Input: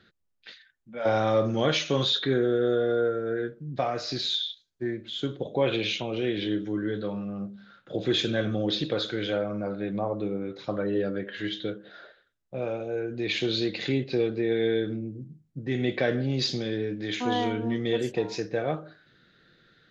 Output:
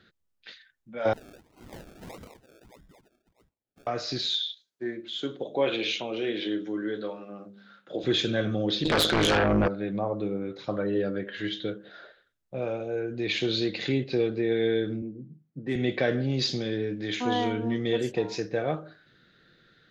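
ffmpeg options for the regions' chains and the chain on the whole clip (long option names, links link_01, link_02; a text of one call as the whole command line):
ffmpeg -i in.wav -filter_complex "[0:a]asettb=1/sr,asplit=3[link_01][link_02][link_03];[link_01]atrim=end=1.134[link_04];[link_02]atrim=start=1.13:end=3.87,asetpts=PTS-STARTPTS,afade=type=in:duration=0.004:curve=qsin,afade=type=out:start_time=2.736:duration=0.004:curve=qsin,asuperpass=centerf=5000:order=8:qfactor=1.6,acompressor=threshold=-40dB:ratio=6:attack=3.2:release=140:knee=1:detection=peak,acrusher=samples=35:mix=1:aa=0.000001:lfo=1:lforange=21:lforate=1.6[link_05];[link_03]atrim=start=3.866[link_06];[link_04][link_05]acrossfade=duration=0.004:curve1=hsin:curve2=qsin[link_07];[link_07][link_06]acrossfade=duration=0.004:curve1=qsin:curve2=hsin,asettb=1/sr,asplit=3[link_08][link_09][link_10];[link_08]atrim=end=4.484[link_11];[link_09]atrim=start=4.48:end=8.04,asetpts=PTS-STARTPTS,afade=type=in:duration=0.004:curve=qsin,afade=type=out:start_time=3.556:duration=0.004:curve=qsin,highpass=230,bandreject=frequency=50:width_type=h:width=6,bandreject=frequency=100:width_type=h:width=6,bandreject=frequency=150:width_type=h:width=6,bandreject=frequency=200:width_type=h:width=6,bandreject=frequency=250:width_type=h:width=6,bandreject=frequency=300:width_type=h:width=6,bandreject=frequency=350:width_type=h:width=6,bandreject=frequency=400:width_type=h:width=6,bandreject=frequency=450:width_type=h:width=6,bandreject=frequency=500:width_type=h:width=6[link_12];[link_10]atrim=start=8.036[link_13];[link_11][link_12]acrossfade=duration=0.004:curve1=hsin:curve2=qsin[link_14];[link_14][link_13]acrossfade=duration=0.004:curve1=qsin:curve2=hsin,asettb=1/sr,asplit=3[link_15][link_16][link_17];[link_15]atrim=end=8.854[link_18];[link_16]atrim=start=8.85:end=9.68,asetpts=PTS-STARTPTS,afade=type=in:duration=0.004:curve=qsin,afade=type=out:start_time=0.826:duration=0.004:curve=qsin,highpass=frequency=83:width=0.5412,highpass=frequency=83:width=1.3066,aeval=exprs='0.168*sin(PI/2*3.98*val(0)/0.168)':channel_layout=same,tremolo=f=160:d=0.788[link_19];[link_17]atrim=start=9.676[link_20];[link_18][link_19]acrossfade=duration=0.004:curve1=hsin:curve2=qsin[link_21];[link_21][link_20]acrossfade=duration=0.004:curve1=qsin:curve2=hsin,asettb=1/sr,asplit=3[link_22][link_23][link_24];[link_22]atrim=end=15.024[link_25];[link_23]atrim=start=15.02:end=15.76,asetpts=PTS-STARTPTS,afade=type=in:duration=0.004:curve=qsin,afade=type=out:start_time=0.736:duration=0.004:curve=qsin,highpass=frequency=140:width=0.5412,highpass=frequency=140:width=1.3066,adynamicsmooth=sensitivity=7:basefreq=3600[link_26];[link_24]atrim=start=15.756[link_27];[link_25][link_26]acrossfade=duration=0.004:curve1=hsin:curve2=qsin[link_28];[link_28][link_27]acrossfade=duration=0.004:curve1=qsin:curve2=hsin" out.wav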